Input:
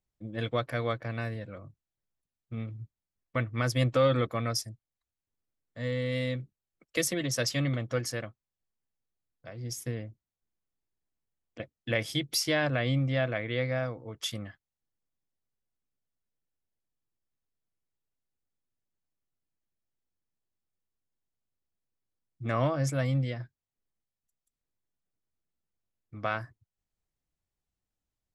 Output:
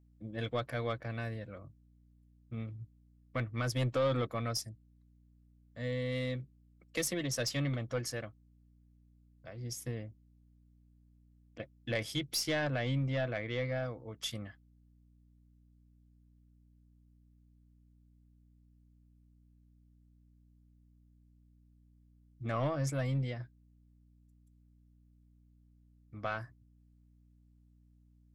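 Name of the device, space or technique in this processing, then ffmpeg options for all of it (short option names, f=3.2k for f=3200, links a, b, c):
valve amplifier with mains hum: -af "aeval=exprs='(tanh(10*val(0)+0.15)-tanh(0.15))/10':c=same,aeval=exprs='val(0)+0.00112*(sin(2*PI*60*n/s)+sin(2*PI*2*60*n/s)/2+sin(2*PI*3*60*n/s)/3+sin(2*PI*4*60*n/s)/4+sin(2*PI*5*60*n/s)/5)':c=same,volume=-3.5dB"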